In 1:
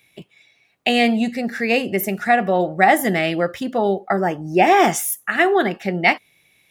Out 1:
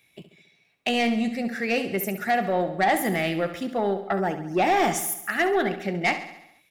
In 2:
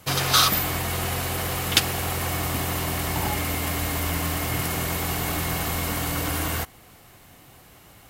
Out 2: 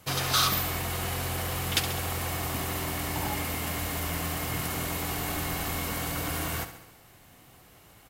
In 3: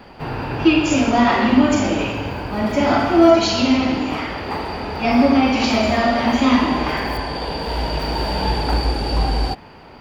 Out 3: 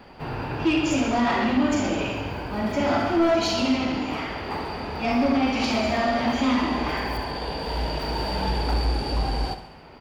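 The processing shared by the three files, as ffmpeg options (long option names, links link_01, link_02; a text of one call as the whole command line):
ffmpeg -i in.wav -filter_complex "[0:a]asoftclip=type=tanh:threshold=-10dB,asplit=2[link_01][link_02];[link_02]aecho=0:1:68|136|204|272|340|408|476:0.266|0.154|0.0895|0.0519|0.0301|0.0175|0.0101[link_03];[link_01][link_03]amix=inputs=2:normalize=0,volume=-5dB" out.wav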